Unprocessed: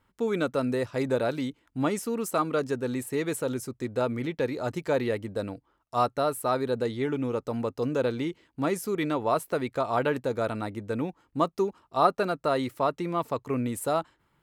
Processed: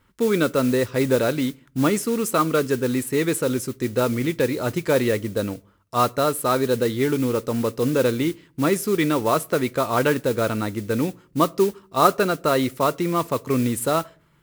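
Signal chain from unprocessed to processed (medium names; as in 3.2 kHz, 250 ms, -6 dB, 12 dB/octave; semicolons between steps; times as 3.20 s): modulation noise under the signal 19 dB; peaking EQ 770 Hz -7 dB 0.66 oct; on a send: reverberation RT60 0.45 s, pre-delay 5 ms, DRR 20 dB; on the sum: trim +8 dB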